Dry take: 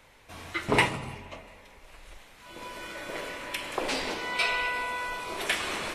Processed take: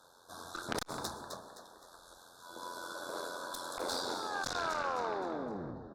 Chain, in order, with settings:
turntable brake at the end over 1.94 s
high-pass filter 480 Hz 6 dB per octave
harmonic generator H 4 −19 dB, 5 −32 dB, 6 −36 dB, 7 −10 dB, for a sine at −8 dBFS
Chebyshev band-stop filter 1,600–3,500 Hz, order 5
amplitude modulation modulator 87 Hz, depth 50%
echo with shifted repeats 259 ms, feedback 39%, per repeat +59 Hz, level −12 dB
convolution reverb RT60 0.60 s, pre-delay 102 ms, DRR 18 dB
saturating transformer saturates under 3,000 Hz
level +2.5 dB

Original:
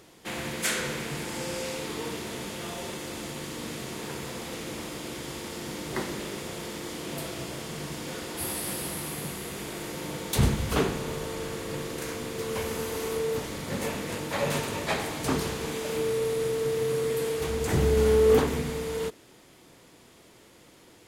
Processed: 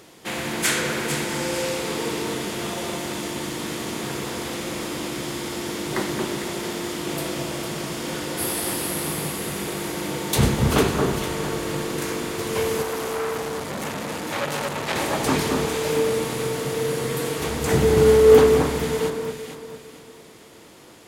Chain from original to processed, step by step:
low-shelf EQ 76 Hz −9 dB
delay that swaps between a low-pass and a high-pass 226 ms, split 1,600 Hz, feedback 58%, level −3 dB
0:12.82–0:14.96: saturating transformer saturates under 2,300 Hz
level +6 dB

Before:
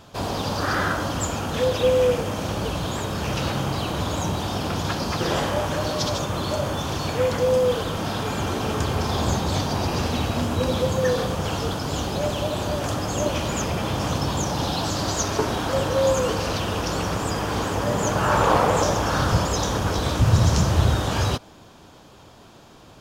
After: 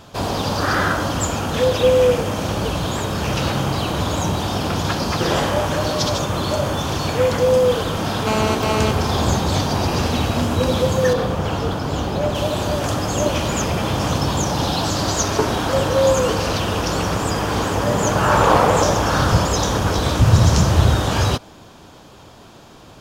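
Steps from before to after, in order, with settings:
0:08.27–0:08.91: phone interference −25 dBFS
0:11.13–0:12.35: parametric band 10,000 Hz −9 dB 2.5 octaves
level +4.5 dB

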